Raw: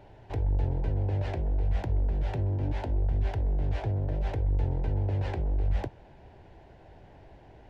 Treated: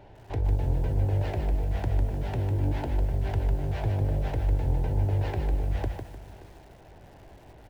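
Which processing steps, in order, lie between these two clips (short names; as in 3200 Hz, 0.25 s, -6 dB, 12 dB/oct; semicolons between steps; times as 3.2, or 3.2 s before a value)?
on a send: echo 0.576 s -19.5 dB; on the sum: lo-fi delay 0.151 s, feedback 35%, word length 9-bit, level -5.5 dB; gain +1.5 dB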